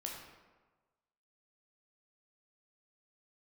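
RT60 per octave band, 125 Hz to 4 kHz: 1.3, 1.2, 1.3, 1.3, 1.1, 0.75 seconds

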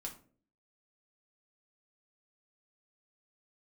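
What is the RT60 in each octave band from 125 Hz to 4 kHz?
0.60, 0.65, 0.55, 0.35, 0.30, 0.25 seconds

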